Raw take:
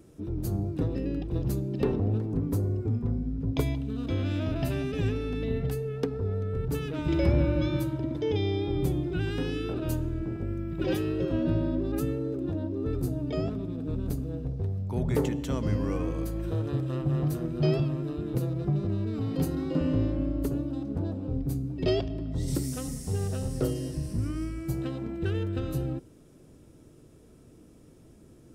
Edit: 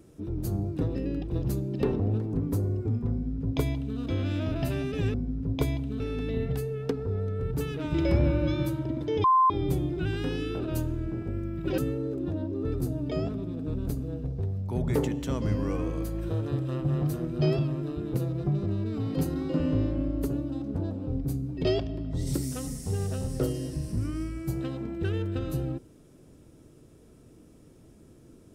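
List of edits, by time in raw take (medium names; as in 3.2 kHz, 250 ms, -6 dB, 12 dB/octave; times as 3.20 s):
3.12–3.98 s: copy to 5.14 s
8.38–8.64 s: bleep 1.04 kHz -17 dBFS
10.92–11.99 s: delete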